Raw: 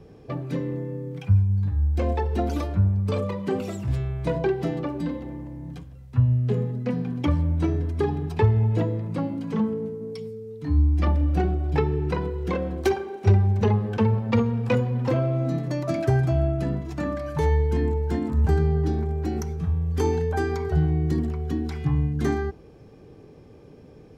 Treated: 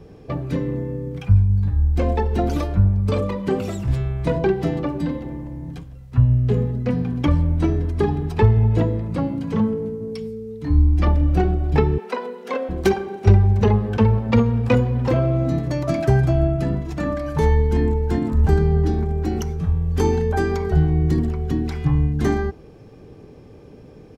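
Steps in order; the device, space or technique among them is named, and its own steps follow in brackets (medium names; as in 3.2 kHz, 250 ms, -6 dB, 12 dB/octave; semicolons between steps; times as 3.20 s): 11.98–12.69 s: steep high-pass 420 Hz 72 dB/octave; octave pedal (harmony voices -12 st -9 dB); trim +4 dB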